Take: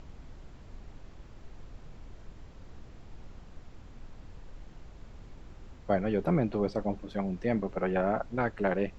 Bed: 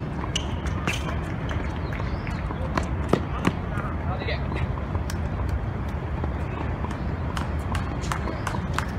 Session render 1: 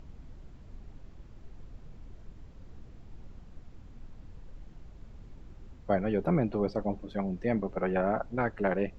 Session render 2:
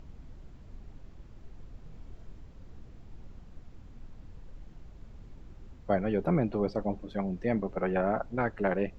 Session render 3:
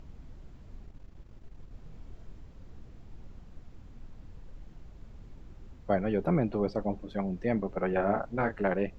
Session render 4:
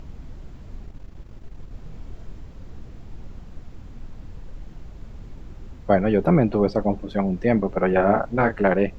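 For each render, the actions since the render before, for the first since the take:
broadband denoise 6 dB, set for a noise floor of −50 dBFS
0:01.83–0:02.39: double-tracking delay 25 ms −6 dB
0:00.86–0:01.71: transient designer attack −2 dB, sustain −8 dB; 0:07.90–0:08.63: double-tracking delay 30 ms −7 dB
level +9.5 dB

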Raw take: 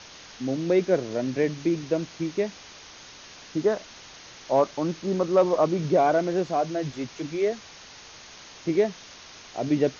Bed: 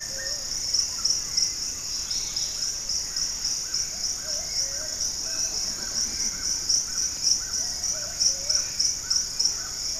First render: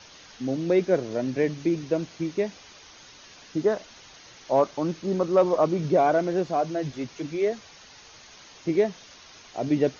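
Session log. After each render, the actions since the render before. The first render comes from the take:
broadband denoise 6 dB, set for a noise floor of −47 dBFS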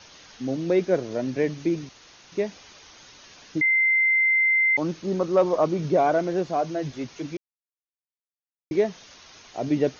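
0:01.89–0:02.32: fill with room tone
0:03.61–0:04.77: beep over 2,080 Hz −17 dBFS
0:07.37–0:08.71: silence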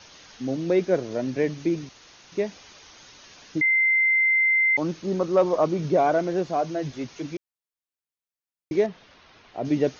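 0:08.86–0:09.65: high-frequency loss of the air 250 metres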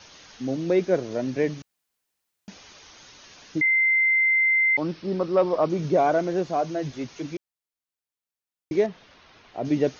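0:01.62–0:02.48: fill with room tone
0:03.67–0:05.70: elliptic low-pass filter 5,400 Hz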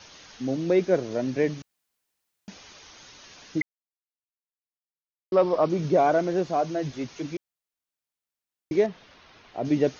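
0:03.62–0:05.32: silence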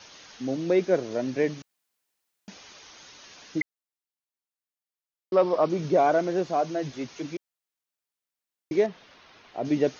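low-shelf EQ 130 Hz −8.5 dB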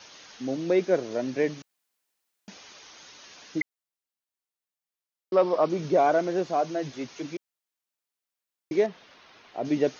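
low-shelf EQ 110 Hz −7.5 dB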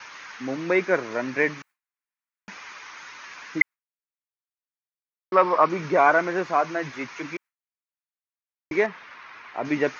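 noise gate with hold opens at −46 dBFS
flat-topped bell 1,500 Hz +13 dB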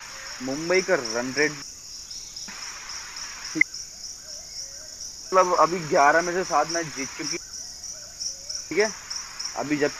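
mix in bed −9 dB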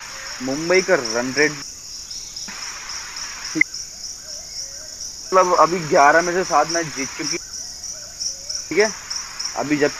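level +5.5 dB
brickwall limiter −1 dBFS, peak gain reduction 2.5 dB

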